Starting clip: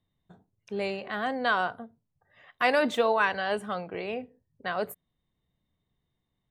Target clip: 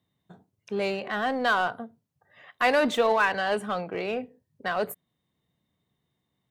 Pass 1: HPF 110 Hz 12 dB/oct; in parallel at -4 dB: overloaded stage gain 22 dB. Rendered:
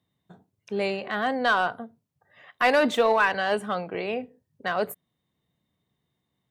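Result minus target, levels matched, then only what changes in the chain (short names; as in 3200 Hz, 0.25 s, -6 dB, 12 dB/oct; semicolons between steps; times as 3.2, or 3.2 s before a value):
overloaded stage: distortion -6 dB
change: overloaded stage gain 30 dB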